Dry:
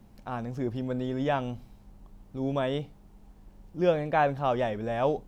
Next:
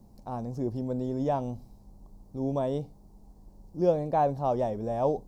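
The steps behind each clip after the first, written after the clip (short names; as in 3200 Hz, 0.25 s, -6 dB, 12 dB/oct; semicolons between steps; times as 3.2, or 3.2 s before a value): band shelf 2100 Hz -15 dB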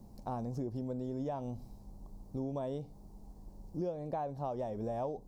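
compressor 10:1, threshold -35 dBFS, peak gain reduction 17 dB; gain +1 dB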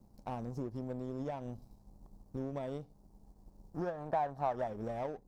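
power-law curve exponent 1.4; spectral gain 3.75–4.67, 610–1900 Hz +7 dB; gain +1 dB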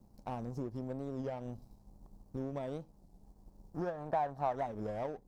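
record warp 33 1/3 rpm, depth 160 cents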